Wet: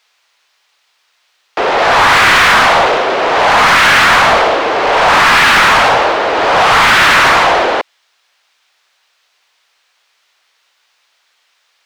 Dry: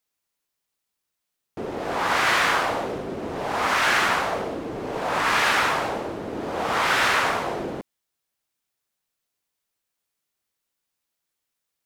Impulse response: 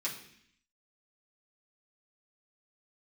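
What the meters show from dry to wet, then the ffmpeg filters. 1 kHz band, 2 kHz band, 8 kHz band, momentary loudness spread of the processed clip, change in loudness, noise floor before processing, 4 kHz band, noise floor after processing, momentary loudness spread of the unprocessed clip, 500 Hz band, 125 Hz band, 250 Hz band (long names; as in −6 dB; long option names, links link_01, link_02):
+15.5 dB, +15.5 dB, +12.5 dB, 6 LU, +15.0 dB, −82 dBFS, +15.5 dB, −60 dBFS, 12 LU, +14.5 dB, +11.5 dB, +9.0 dB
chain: -filter_complex "[0:a]crystalizer=i=3.5:c=0,acrossover=split=480 5200:gain=0.141 1 0.0708[link_01][link_02][link_03];[link_01][link_02][link_03]amix=inputs=3:normalize=0,asplit=2[link_04][link_05];[link_05]highpass=frequency=720:poles=1,volume=29dB,asoftclip=type=tanh:threshold=-5.5dB[link_06];[link_04][link_06]amix=inputs=2:normalize=0,lowpass=frequency=2100:poles=1,volume=-6dB,volume=6dB"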